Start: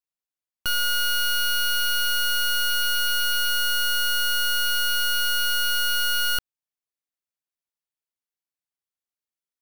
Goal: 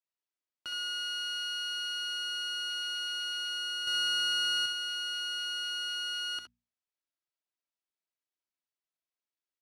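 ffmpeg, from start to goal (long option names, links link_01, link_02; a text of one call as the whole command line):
ffmpeg -i in.wav -filter_complex "[0:a]aeval=exprs='if(lt(val(0),0),0.708*val(0),val(0))':channel_layout=same,bandreject=frequency=60:width_type=h:width=6,bandreject=frequency=120:width_type=h:width=6,bandreject=frequency=180:width_type=h:width=6,bandreject=frequency=240:width_type=h:width=6,aecho=1:1:3.1:0.44,alimiter=level_in=7dB:limit=-24dB:level=0:latency=1:release=26,volume=-7dB,asettb=1/sr,asplit=3[link_01][link_02][link_03];[link_01]atrim=end=3.874[link_04];[link_02]atrim=start=3.87:end=4.66,asetpts=PTS-STARTPTS,afade=type=in:duration=0.004:curve=qsin,afade=type=out:start_time=0.786:duration=0.004:curve=qsin,acontrast=45[link_05];[link_03]atrim=start=4.656[link_06];[link_04][link_05]acrossfade=duration=0.004:curve1=hsin:curve2=qsin[link_07];[link_07][link_06]acrossfade=duration=0.004:curve1=qsin:curve2=hsin,acrusher=bits=8:mode=log:mix=0:aa=0.000001,highpass=140,lowpass=5800,aecho=1:1:66|78:0.447|0.158,volume=-2.5dB" out.wav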